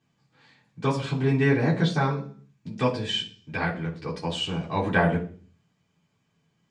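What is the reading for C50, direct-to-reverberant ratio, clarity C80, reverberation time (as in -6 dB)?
11.5 dB, -7.0 dB, 16.5 dB, 0.45 s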